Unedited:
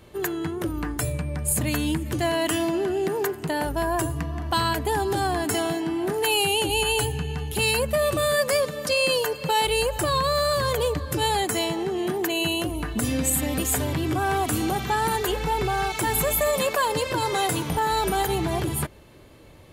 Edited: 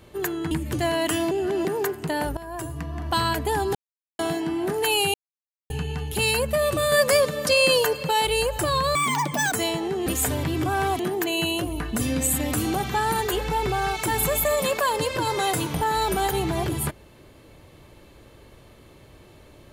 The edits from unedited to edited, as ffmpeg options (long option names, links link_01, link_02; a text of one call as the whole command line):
ffmpeg -i in.wav -filter_complex "[0:a]asplit=16[link_01][link_02][link_03][link_04][link_05][link_06][link_07][link_08][link_09][link_10][link_11][link_12][link_13][link_14][link_15][link_16];[link_01]atrim=end=0.512[link_17];[link_02]atrim=start=1.908:end=2.712[link_18];[link_03]atrim=start=2.708:end=3.052,asetpts=PTS-STARTPTS,areverse[link_19];[link_04]atrim=start=3.048:end=3.77,asetpts=PTS-STARTPTS,afade=type=out:start_time=0.718:duration=0.004:curve=hsin:silence=0.141254[link_20];[link_05]atrim=start=3.77:end=5.15,asetpts=PTS-STARTPTS,afade=type=in:duration=0.71:silence=0.141254,afade=type=out:start_time=1.376:duration=0.004:curve=hsin[link_21];[link_06]atrim=start=5.15:end=5.59,asetpts=PTS-STARTPTS,volume=0[link_22];[link_07]atrim=start=5.59:end=6.54,asetpts=PTS-STARTPTS,afade=type=in:duration=0.004:curve=hsin,afade=type=out:start_time=0.946:duration=0.004:curve=hsin[link_23];[link_08]atrim=start=6.54:end=7.1,asetpts=PTS-STARTPTS,volume=0[link_24];[link_09]atrim=start=7.1:end=8.322,asetpts=PTS-STARTPTS,afade=type=in:duration=0.004:curve=hsin[link_25];[link_10]atrim=start=8.318:end=9.432,asetpts=PTS-STARTPTS,volume=3.5dB[link_26];[link_11]atrim=start=9.428:end=10.354[link_27];[link_12]atrim=start=10.35:end=11.48,asetpts=PTS-STARTPTS,asetrate=86877,aresample=44100[link_28];[link_13]atrim=start=11.476:end=12.022[link_29];[link_14]atrim=start=13.558:end=14.492[link_30];[link_15]atrim=start=12.018:end=13.562[link_31];[link_16]atrim=start=14.488[link_32];[link_17][link_18]acrossfade=duration=0.004:curve1=hsin:curve2=hsin[link_33];[link_33][link_19]acrossfade=duration=0.004:curve1=hsin:curve2=hsin[link_34];[link_20][link_21][link_22][link_23][link_24][link_25]concat=n=6:v=0:a=1[link_35];[link_34][link_35]acrossfade=duration=0.004:curve1=hsin:curve2=hsin[link_36];[link_36][link_26]acrossfade=duration=0.004:curve1=hsin:curve2=hsin[link_37];[link_37][link_27]acrossfade=duration=0.004:curve1=hsin:curve2=hsin[link_38];[link_38][link_28]acrossfade=duration=0.004:curve1=hsin:curve2=hsin[link_39];[link_39][link_29]acrossfade=duration=0.004:curve1=hsin:curve2=hsin[link_40];[link_40][link_30]acrossfade=duration=0.004:curve1=hsin:curve2=hsin[link_41];[link_41][link_31]acrossfade=duration=0.004:curve1=hsin:curve2=hsin[link_42];[link_42][link_32]acrossfade=duration=0.004:curve1=hsin:curve2=hsin" out.wav